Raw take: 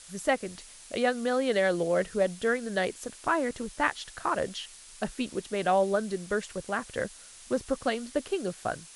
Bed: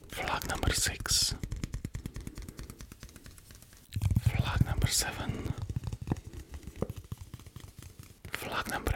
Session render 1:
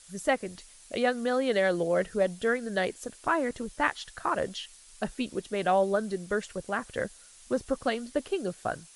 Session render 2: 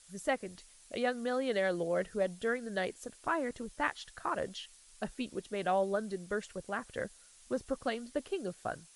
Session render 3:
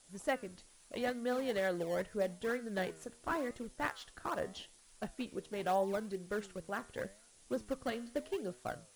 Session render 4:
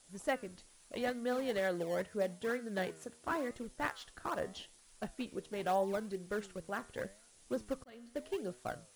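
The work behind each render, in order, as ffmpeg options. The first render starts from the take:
-af "afftdn=nr=6:nf=-50"
-af "volume=0.501"
-filter_complex "[0:a]flanger=delay=7.9:depth=5:regen=86:speed=0.81:shape=sinusoidal,asplit=2[s0][s1];[s1]acrusher=samples=20:mix=1:aa=0.000001:lfo=1:lforange=32:lforate=2.2,volume=0.316[s2];[s0][s2]amix=inputs=2:normalize=0"
-filter_complex "[0:a]asettb=1/sr,asplit=3[s0][s1][s2];[s0]atrim=end=1.594[s3];[s1]atrim=start=1.59:end=3.53,asetpts=PTS-STARTPTS,afade=t=in:d=0.004:c=qsin,afade=t=out:st=1.936:d=0.004:c=qsin,highpass=68[s4];[s2]atrim=start=3.526[s5];[s3][s4]acrossfade=d=0.004:c1=hsin:c2=qsin[s6];[s6][s5]acrossfade=d=0.004:c1=qsin:c2=hsin,asplit=2[s7][s8];[s7]atrim=end=7.84,asetpts=PTS-STARTPTS,afade=t=out:st=7.836:d=0.004:c=hsin[s9];[s8]atrim=start=7.84,asetpts=PTS-STARTPTS,afade=t=in:d=0.48[s10];[s9][s10]concat=n=2:v=0:a=1"

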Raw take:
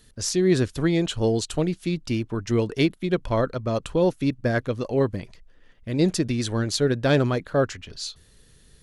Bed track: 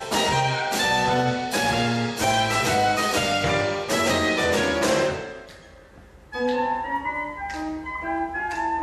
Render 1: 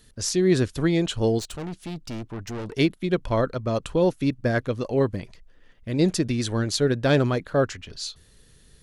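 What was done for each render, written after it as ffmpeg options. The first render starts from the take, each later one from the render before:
-filter_complex "[0:a]asplit=3[s0][s1][s2];[s0]afade=t=out:st=1.38:d=0.02[s3];[s1]aeval=exprs='(tanh(31.6*val(0)+0.4)-tanh(0.4))/31.6':c=same,afade=t=in:st=1.38:d=0.02,afade=t=out:st=2.73:d=0.02[s4];[s2]afade=t=in:st=2.73:d=0.02[s5];[s3][s4][s5]amix=inputs=3:normalize=0"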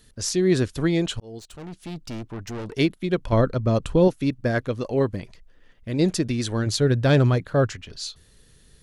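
-filter_complex "[0:a]asettb=1/sr,asplit=3[s0][s1][s2];[s0]atrim=end=3.324[s3];[s1]atrim=start=3.32:end=4.08,asetpts=PTS-STARTPTS,afade=t=in:d=0.004:c=qsin,afade=t=out:st=0.756:d=0.004:c=qsin,lowshelf=f=320:g=8[s4];[s2]atrim=start=4.076[s5];[s3][s4]acrossfade=d=0.004:c1=hsin:c2=qsin[s6];[s6][s5]acrossfade=d=0.004:c1=qsin:c2=hsin,asettb=1/sr,asplit=3[s7][s8][s9];[s7]atrim=end=6.664[s10];[s8]atrim=start=6.66:end=7.76,asetpts=PTS-STARTPTS,afade=t=in:d=0.004:c=qsin,afade=t=out:st=1.096:d=0.004:c=qsin,equalizer=f=110:w=1.7:g=8.5[s11];[s9]atrim=start=7.756[s12];[s10][s11]acrossfade=d=0.004:c1=hsin:c2=qsin[s13];[s13][s12]acrossfade=d=0.004:c1=qsin:c2=hsin,asplit=2[s14][s15];[s14]atrim=end=1.2,asetpts=PTS-STARTPTS,afade=t=out:st=1.196:d=0.004:c=hsin[s16];[s15]atrim=start=1.2,asetpts=PTS-STARTPTS,afade=t=in:d=0.77[s17];[s16][s17]concat=n=2:v=0:a=1"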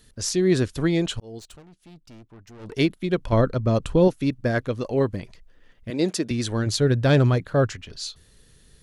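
-filter_complex "[0:a]asettb=1/sr,asplit=3[s0][s1][s2];[s0]atrim=end=5.904[s3];[s1]atrim=start=5.9:end=6.31,asetpts=PTS-STARTPTS,afade=t=in:d=0.004:c=qsin,afade=t=out:st=0.406:d=0.004:c=qsin,highpass=240[s4];[s2]atrim=start=6.306[s5];[s3][s4]acrossfade=d=0.004:c1=hsin:c2=qsin[s6];[s6][s5]acrossfade=d=0.004:c1=qsin:c2=hsin,asplit=3[s7][s8][s9];[s7]atrim=end=1.63,asetpts=PTS-STARTPTS,afade=t=out:st=1.5:d=0.13:silence=0.223872[s10];[s8]atrim=start=1.63:end=2.59,asetpts=PTS-STARTPTS,volume=0.224[s11];[s9]atrim=start=2.59,asetpts=PTS-STARTPTS,afade=t=in:d=0.13:silence=0.223872[s12];[s10][s11][s12]concat=n=3:v=0:a=1"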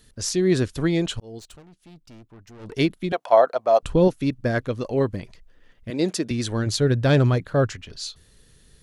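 -filter_complex "[0:a]asettb=1/sr,asplit=3[s0][s1][s2];[s0]atrim=end=3.124[s3];[s1]atrim=start=3.12:end=3.83,asetpts=PTS-STARTPTS,afade=t=in:d=0.004:c=qsin,afade=t=out:st=0.706:d=0.004:c=qsin,highpass=f=710:t=q:w=5.4[s4];[s2]atrim=start=3.826[s5];[s3][s4]acrossfade=d=0.004:c1=hsin:c2=qsin[s6];[s6][s5]acrossfade=d=0.004:c1=qsin:c2=hsin"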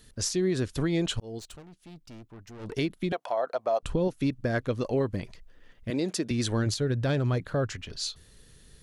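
-af "acompressor=threshold=0.112:ratio=5,alimiter=limit=0.126:level=0:latency=1:release=230"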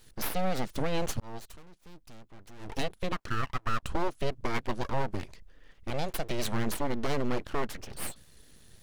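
-af "aeval=exprs='abs(val(0))':c=same"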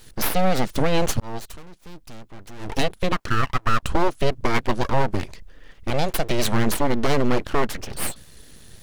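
-af "volume=3.16"

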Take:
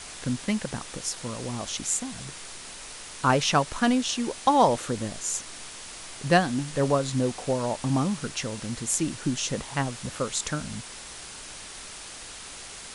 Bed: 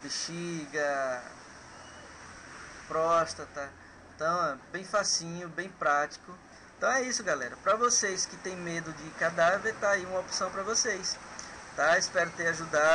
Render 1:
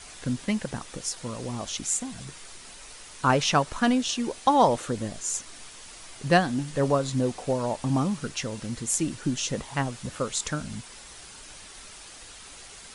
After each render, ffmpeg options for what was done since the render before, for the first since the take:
-af "afftdn=nr=6:nf=-42"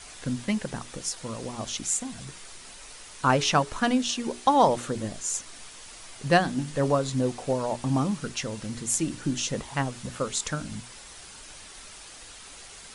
-af "bandreject=f=60:t=h:w=6,bandreject=f=120:t=h:w=6,bandreject=f=180:t=h:w=6,bandreject=f=240:t=h:w=6,bandreject=f=300:t=h:w=6,bandreject=f=360:t=h:w=6,bandreject=f=420:t=h:w=6"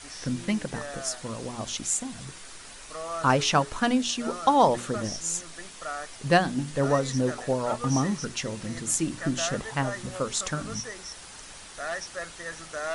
-filter_complex "[1:a]volume=0.376[s0];[0:a][s0]amix=inputs=2:normalize=0"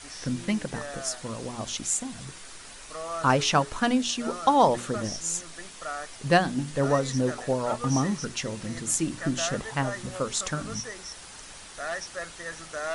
-af anull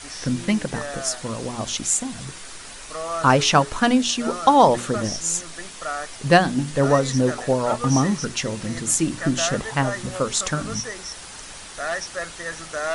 -af "volume=2,alimiter=limit=0.708:level=0:latency=1"

